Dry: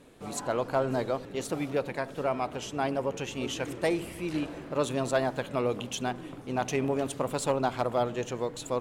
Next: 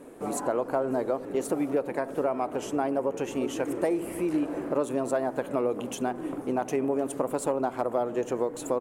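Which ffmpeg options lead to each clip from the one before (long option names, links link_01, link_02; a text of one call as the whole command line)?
ffmpeg -i in.wav -af "acompressor=threshold=-34dB:ratio=4,firequalizer=gain_entry='entry(110,0);entry(290,13);entry(3600,-4);entry(9100,9)':delay=0.05:min_phase=1,volume=-2dB" out.wav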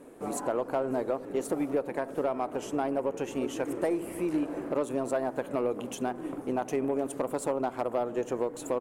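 ffmpeg -i in.wav -af "aeval=exprs='0.251*(cos(1*acos(clip(val(0)/0.251,-1,1)))-cos(1*PI/2))+0.00158*(cos(6*acos(clip(val(0)/0.251,-1,1)))-cos(6*PI/2))+0.0112*(cos(7*acos(clip(val(0)/0.251,-1,1)))-cos(7*PI/2))':channel_layout=same,asoftclip=type=tanh:threshold=-18dB" out.wav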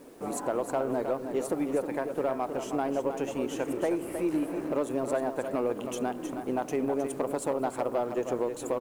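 ffmpeg -i in.wav -af "acrusher=bits=9:mix=0:aa=0.000001,aecho=1:1:315:0.398" out.wav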